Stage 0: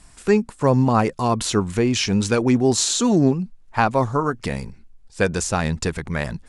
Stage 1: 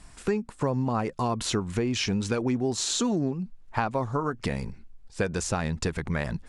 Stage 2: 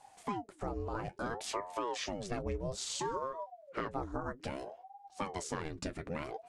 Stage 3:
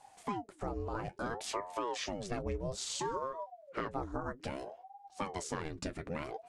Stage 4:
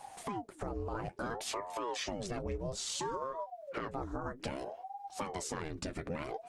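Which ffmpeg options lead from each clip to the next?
ffmpeg -i in.wav -af "highshelf=frequency=6100:gain=-6.5,acompressor=threshold=-24dB:ratio=5" out.wav
ffmpeg -i in.wav -af "flanger=delay=7.3:depth=4.2:regen=-53:speed=0.48:shape=sinusoidal,aeval=exprs='val(0)*sin(2*PI*490*n/s+490*0.65/0.6*sin(2*PI*0.6*n/s))':channel_layout=same,volume=-4dB" out.wav
ffmpeg -i in.wav -af anull out.wav
ffmpeg -i in.wav -af "alimiter=level_in=3.5dB:limit=-24dB:level=0:latency=1:release=60,volume=-3.5dB,acompressor=threshold=-53dB:ratio=2,volume=10.5dB" -ar 48000 -c:a libopus -b:a 24k out.opus

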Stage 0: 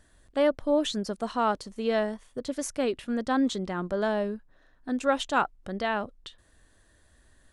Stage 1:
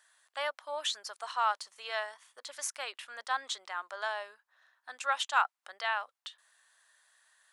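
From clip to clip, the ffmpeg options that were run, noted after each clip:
ffmpeg -i in.wav -af "highpass=frequency=890:width=0.5412,highpass=frequency=890:width=1.3066" out.wav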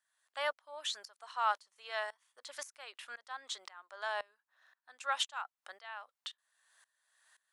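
ffmpeg -i in.wav -af "aeval=exprs='val(0)*pow(10,-22*if(lt(mod(-1.9*n/s,1),2*abs(-1.9)/1000),1-mod(-1.9*n/s,1)/(2*abs(-1.9)/1000),(mod(-1.9*n/s,1)-2*abs(-1.9)/1000)/(1-2*abs(-1.9)/1000))/20)':channel_layout=same,volume=2.5dB" out.wav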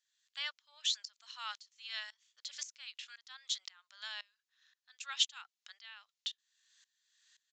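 ffmpeg -i in.wav -af "asuperpass=centerf=5700:order=4:qfactor=0.77,aresample=16000,aresample=44100,volume=6dB" out.wav

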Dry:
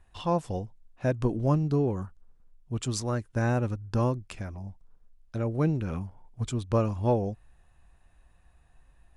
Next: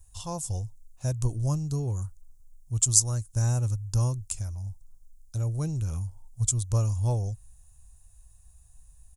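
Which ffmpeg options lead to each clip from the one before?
ffmpeg -i in.wav -af "firequalizer=gain_entry='entry(110,0);entry(200,-18);entry(930,-13);entry(1800,-19);entry(6800,13)':delay=0.05:min_phase=1,volume=5.5dB" out.wav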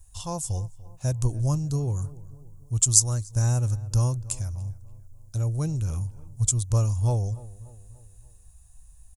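ffmpeg -i in.wav -filter_complex "[0:a]asplit=2[link_01][link_02];[link_02]adelay=291,lowpass=frequency=1900:poles=1,volume=-18.5dB,asplit=2[link_03][link_04];[link_04]adelay=291,lowpass=frequency=1900:poles=1,volume=0.5,asplit=2[link_05][link_06];[link_06]adelay=291,lowpass=frequency=1900:poles=1,volume=0.5,asplit=2[link_07][link_08];[link_08]adelay=291,lowpass=frequency=1900:poles=1,volume=0.5[link_09];[link_01][link_03][link_05][link_07][link_09]amix=inputs=5:normalize=0,volume=2.5dB" out.wav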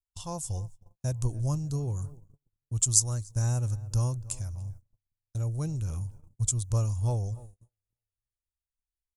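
ffmpeg -i in.wav -af "agate=range=-40dB:threshold=-38dB:ratio=16:detection=peak,volume=-4.5dB" out.wav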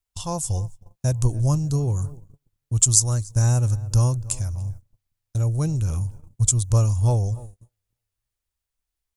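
ffmpeg -i in.wav -af "alimiter=level_in=9.5dB:limit=-1dB:release=50:level=0:latency=1,volume=-1dB" out.wav

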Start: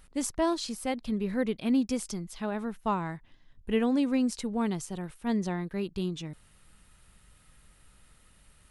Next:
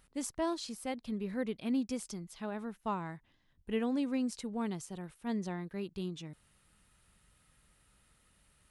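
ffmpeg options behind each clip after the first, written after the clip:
ffmpeg -i in.wav -af "highpass=frequency=53:poles=1,volume=-6.5dB" out.wav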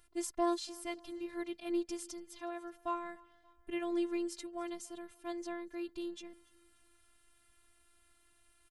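ffmpeg -i in.wav -af "afftfilt=real='hypot(re,im)*cos(PI*b)':imag='0':win_size=512:overlap=0.75,aecho=1:1:288|576|864:0.0631|0.0322|0.0164,volume=2.5dB" out.wav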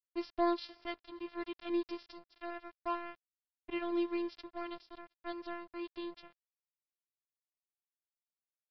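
ffmpeg -i in.wav -af "aeval=exprs='sgn(val(0))*max(abs(val(0))-0.00447,0)':channel_layout=same,aresample=11025,aresample=44100,volume=2dB" out.wav

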